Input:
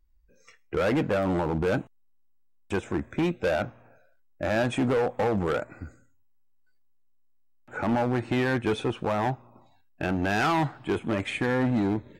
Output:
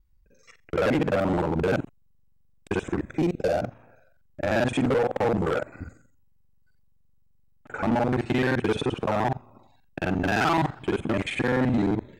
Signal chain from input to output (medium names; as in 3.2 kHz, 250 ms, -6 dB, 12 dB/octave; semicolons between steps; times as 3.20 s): time reversed locally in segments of 43 ms; time-frequency box 3.16–3.71 s, 820–4100 Hz -7 dB; trim +2 dB